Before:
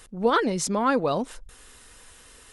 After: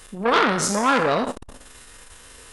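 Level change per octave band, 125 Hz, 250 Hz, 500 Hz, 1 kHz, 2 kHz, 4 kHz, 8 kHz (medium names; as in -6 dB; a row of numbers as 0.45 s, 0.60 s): +2.5 dB, +1.5 dB, +2.0 dB, +5.0 dB, +8.5 dB, +7.0 dB, +5.5 dB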